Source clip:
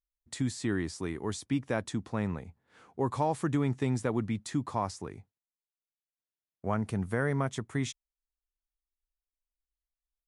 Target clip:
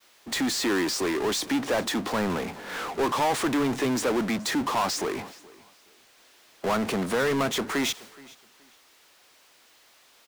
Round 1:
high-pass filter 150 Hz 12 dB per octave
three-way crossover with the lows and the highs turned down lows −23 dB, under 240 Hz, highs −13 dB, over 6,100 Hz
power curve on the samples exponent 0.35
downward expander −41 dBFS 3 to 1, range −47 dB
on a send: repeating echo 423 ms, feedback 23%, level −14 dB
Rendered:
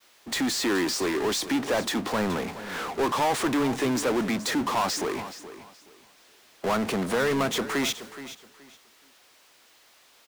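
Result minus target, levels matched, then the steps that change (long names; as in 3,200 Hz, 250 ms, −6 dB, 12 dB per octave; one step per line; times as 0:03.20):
echo-to-direct +8.5 dB
change: repeating echo 423 ms, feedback 23%, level −22.5 dB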